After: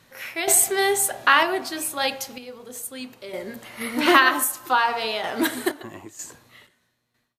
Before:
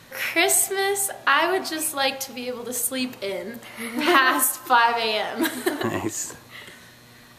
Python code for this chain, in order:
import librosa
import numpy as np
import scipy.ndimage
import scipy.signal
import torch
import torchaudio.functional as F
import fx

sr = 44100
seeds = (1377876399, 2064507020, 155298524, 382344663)

y = fx.fade_out_tail(x, sr, length_s=2.36)
y = fx.tremolo_random(y, sr, seeds[0], hz=2.1, depth_pct=75)
y = F.gain(torch.from_numpy(y), 2.5).numpy()